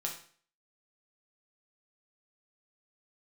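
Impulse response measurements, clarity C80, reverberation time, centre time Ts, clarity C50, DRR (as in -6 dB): 11.5 dB, 0.50 s, 23 ms, 7.5 dB, -1.0 dB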